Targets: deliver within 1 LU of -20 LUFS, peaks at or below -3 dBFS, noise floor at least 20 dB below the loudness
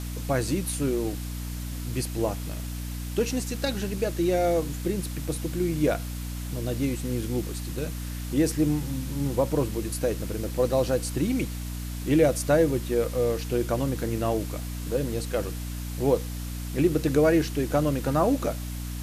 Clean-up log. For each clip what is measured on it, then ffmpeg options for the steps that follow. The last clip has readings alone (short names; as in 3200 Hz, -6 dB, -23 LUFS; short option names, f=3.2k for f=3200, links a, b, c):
hum 60 Hz; harmonics up to 300 Hz; hum level -31 dBFS; noise floor -34 dBFS; noise floor target -48 dBFS; loudness -27.5 LUFS; peak -9.5 dBFS; loudness target -20.0 LUFS
-> -af "bandreject=f=60:t=h:w=4,bandreject=f=120:t=h:w=4,bandreject=f=180:t=h:w=4,bandreject=f=240:t=h:w=4,bandreject=f=300:t=h:w=4"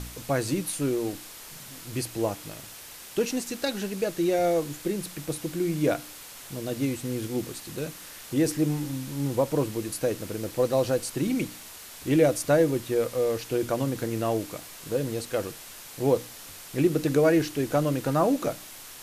hum none; noise floor -44 dBFS; noise floor target -48 dBFS
-> -af "afftdn=nr=6:nf=-44"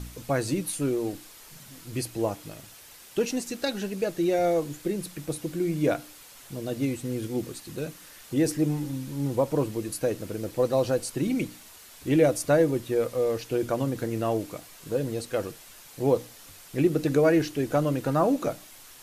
noise floor -49 dBFS; loudness -27.5 LUFS; peak -9.5 dBFS; loudness target -20.0 LUFS
-> -af "volume=7.5dB,alimiter=limit=-3dB:level=0:latency=1"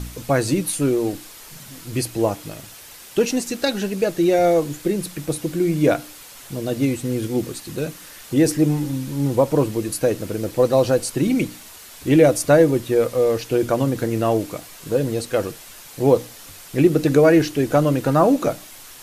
loudness -20.0 LUFS; peak -3.0 dBFS; noise floor -42 dBFS